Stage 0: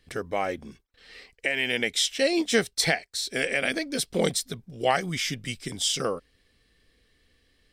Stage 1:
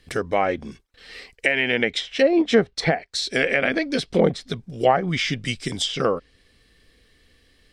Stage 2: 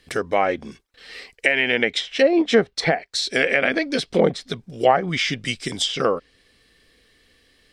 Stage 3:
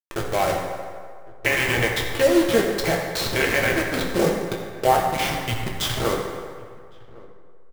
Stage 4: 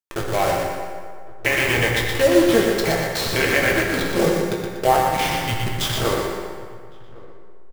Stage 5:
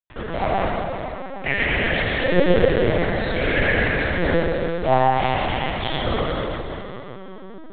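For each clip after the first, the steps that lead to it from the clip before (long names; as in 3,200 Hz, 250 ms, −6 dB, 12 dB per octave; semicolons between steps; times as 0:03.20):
treble cut that deepens with the level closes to 1,100 Hz, closed at −19.5 dBFS; level +7 dB
low-shelf EQ 160 Hz −8.5 dB; level +2 dB
hold until the input has moved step −17.5 dBFS; slap from a distant wall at 190 metres, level −22 dB; convolution reverb RT60 2.0 s, pre-delay 4 ms, DRR −1 dB; level −4 dB
repeating echo 120 ms, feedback 38%, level −5 dB; level +1 dB
dense smooth reverb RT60 3.1 s, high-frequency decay 0.8×, DRR −5.5 dB; linear-prediction vocoder at 8 kHz pitch kept; level −7 dB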